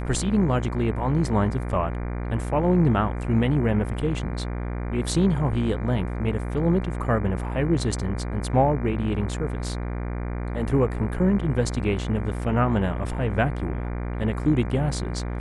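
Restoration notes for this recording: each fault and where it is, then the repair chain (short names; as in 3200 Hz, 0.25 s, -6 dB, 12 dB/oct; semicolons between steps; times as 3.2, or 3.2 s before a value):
buzz 60 Hz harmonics 40 -29 dBFS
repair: de-hum 60 Hz, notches 40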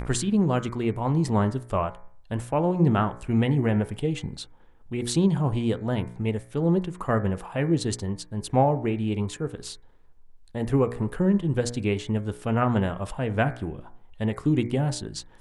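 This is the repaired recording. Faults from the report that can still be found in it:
none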